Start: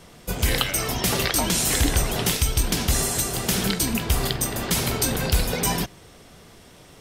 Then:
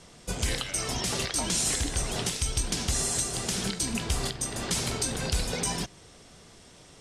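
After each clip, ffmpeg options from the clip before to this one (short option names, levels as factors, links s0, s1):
-af "lowpass=f=9300:w=0.5412,lowpass=f=9300:w=1.3066,bass=f=250:g=0,treble=f=4000:g=6,alimiter=limit=0.282:level=0:latency=1:release=346,volume=0.562"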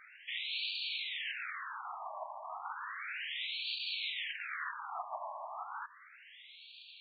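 -af "acontrast=47,aeval=exprs='(mod(20*val(0)+1,2)-1)/20':c=same,afftfilt=real='re*between(b*sr/1024,820*pow(3300/820,0.5+0.5*sin(2*PI*0.33*pts/sr))/1.41,820*pow(3300/820,0.5+0.5*sin(2*PI*0.33*pts/sr))*1.41)':imag='im*between(b*sr/1024,820*pow(3300/820,0.5+0.5*sin(2*PI*0.33*pts/sr))/1.41,820*pow(3300/820,0.5+0.5*sin(2*PI*0.33*pts/sr))*1.41)':win_size=1024:overlap=0.75,volume=1.12"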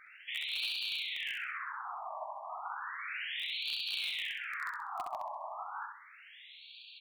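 -filter_complex "[0:a]asplit=2[s0][s1];[s1]acrusher=bits=4:mix=0:aa=0.000001,volume=0.316[s2];[s0][s2]amix=inputs=2:normalize=0,aecho=1:1:65|130|195|260:0.631|0.221|0.0773|0.0271"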